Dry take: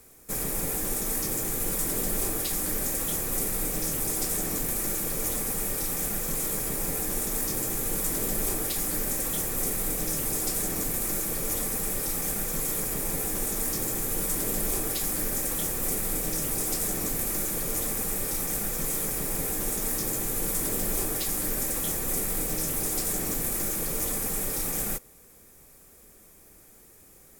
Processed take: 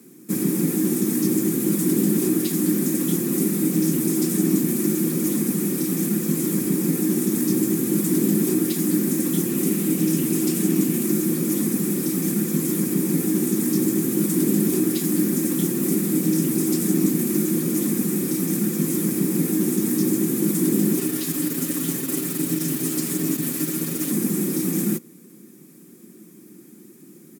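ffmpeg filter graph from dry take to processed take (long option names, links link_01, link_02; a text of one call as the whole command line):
ffmpeg -i in.wav -filter_complex "[0:a]asettb=1/sr,asplit=3[link_01][link_02][link_03];[link_01]atrim=end=9.464[link_04];[link_02]atrim=start=9.46:end=11.04,asetpts=PTS-STARTPTS,afade=type=in:duration=0.004:curve=qsin,afade=type=out:start_time=1.576:duration=0.004:curve=qsin,equalizer=frequency=2800:width_type=o:width=0.46:gain=5.5,aeval=exprs='sgn(val(0))*max(abs(val(0))-0.00119,0)':channel_layout=same[link_05];[link_03]atrim=start=11.036[link_06];[link_04][link_05]acrossfade=duration=0.004:curve1=hsin:curve2=qsin[link_07];[link_07][link_06]acrossfade=duration=0.004:curve1=qsin:curve2=hsin,asettb=1/sr,asplit=3[link_08][link_09][link_10];[link_08]atrim=end=20.994[link_11];[link_09]atrim=start=20.99:end=24.11,asetpts=PTS-STARTPTS,afade=type=in:duration=0.004:curve=qsin,afade=type=out:start_time=3.116:duration=0.004:curve=qsin,equalizer=frequency=210:width=0.49:gain=-4.5,aecho=1:1:7.2:0.85,atrim=end_sample=137592,aeval=exprs='clip(val(0),-1,0.0299)':channel_layout=same[link_12];[link_10]atrim=start=24.106[link_13];[link_11][link_12]acrossfade=duration=0.004:curve1=hsin:curve2=qsin[link_14];[link_14][link_13]acrossfade=duration=0.004:curve1=qsin:curve2=hsin,highpass=frequency=170:width=0.5412,highpass=frequency=170:width=1.3066,lowshelf=frequency=420:width_type=q:width=3:gain=13,aecho=1:1:5.6:0.4" out.wav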